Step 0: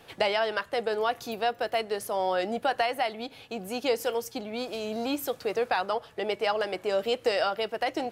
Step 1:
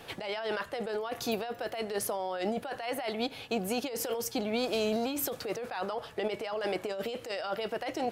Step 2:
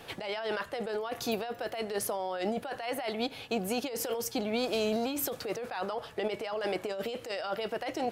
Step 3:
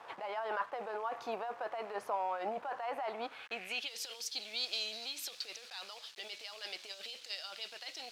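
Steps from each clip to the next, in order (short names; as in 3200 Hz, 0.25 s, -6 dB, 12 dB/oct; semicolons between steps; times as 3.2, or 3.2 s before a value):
negative-ratio compressor -33 dBFS, ratio -1
nothing audible
rattling part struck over -47 dBFS, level -38 dBFS; requantised 8-bit, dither none; band-pass sweep 1000 Hz -> 4200 Hz, 3.17–4.03; gain +4.5 dB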